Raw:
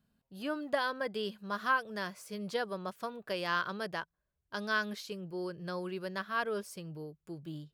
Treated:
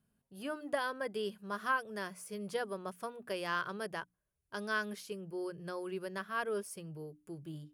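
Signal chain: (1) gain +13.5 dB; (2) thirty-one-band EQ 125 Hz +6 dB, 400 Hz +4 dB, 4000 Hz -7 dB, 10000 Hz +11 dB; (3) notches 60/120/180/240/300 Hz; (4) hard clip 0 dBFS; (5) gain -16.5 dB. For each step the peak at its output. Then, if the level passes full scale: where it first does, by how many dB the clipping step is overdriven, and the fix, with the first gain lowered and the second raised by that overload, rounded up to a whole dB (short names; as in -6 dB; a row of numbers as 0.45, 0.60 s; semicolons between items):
-4.5, -4.5, -4.5, -4.5, -21.0 dBFS; no overload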